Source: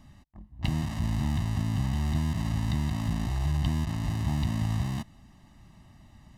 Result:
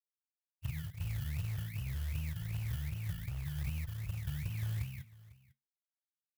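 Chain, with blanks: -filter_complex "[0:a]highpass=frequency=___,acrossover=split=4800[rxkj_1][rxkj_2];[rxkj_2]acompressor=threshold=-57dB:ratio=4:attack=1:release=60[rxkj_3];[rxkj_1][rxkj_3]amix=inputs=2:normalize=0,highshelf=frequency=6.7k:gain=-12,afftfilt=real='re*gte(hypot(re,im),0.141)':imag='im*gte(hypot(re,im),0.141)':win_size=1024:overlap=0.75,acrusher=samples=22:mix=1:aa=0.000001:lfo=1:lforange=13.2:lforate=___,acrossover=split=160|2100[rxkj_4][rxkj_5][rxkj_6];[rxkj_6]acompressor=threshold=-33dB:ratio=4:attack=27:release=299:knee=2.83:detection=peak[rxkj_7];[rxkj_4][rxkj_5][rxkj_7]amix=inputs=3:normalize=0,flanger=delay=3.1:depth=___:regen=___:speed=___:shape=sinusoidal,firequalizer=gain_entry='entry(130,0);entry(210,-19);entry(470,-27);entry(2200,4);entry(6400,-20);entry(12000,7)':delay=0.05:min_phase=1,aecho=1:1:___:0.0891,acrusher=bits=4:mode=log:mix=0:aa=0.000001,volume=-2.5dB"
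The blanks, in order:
64, 2.6, 8.2, -69, 0.5, 500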